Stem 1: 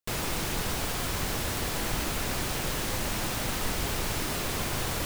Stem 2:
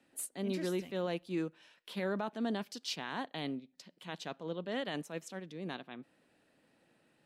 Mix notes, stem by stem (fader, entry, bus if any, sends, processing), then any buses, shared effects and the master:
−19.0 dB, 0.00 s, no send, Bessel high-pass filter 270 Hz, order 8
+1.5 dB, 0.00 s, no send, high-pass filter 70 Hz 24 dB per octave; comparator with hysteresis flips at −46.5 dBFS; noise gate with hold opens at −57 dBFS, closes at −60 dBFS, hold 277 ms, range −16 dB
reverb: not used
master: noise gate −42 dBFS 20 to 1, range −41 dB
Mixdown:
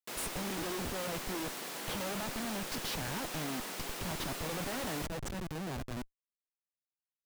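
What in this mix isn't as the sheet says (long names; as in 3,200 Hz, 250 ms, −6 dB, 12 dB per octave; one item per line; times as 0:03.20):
stem 1 −19.0 dB → −9.0 dB
master: missing noise gate −42 dBFS 20 to 1, range −41 dB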